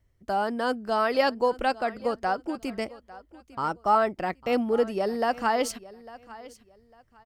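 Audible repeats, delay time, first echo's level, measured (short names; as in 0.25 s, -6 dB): 2, 0.851 s, -19.0 dB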